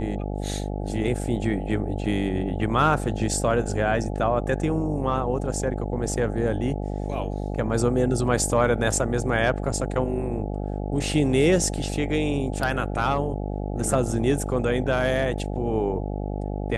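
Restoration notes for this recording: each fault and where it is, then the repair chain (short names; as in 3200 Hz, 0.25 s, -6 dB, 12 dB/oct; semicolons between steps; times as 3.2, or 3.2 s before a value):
buzz 50 Hz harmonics 17 -29 dBFS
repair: de-hum 50 Hz, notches 17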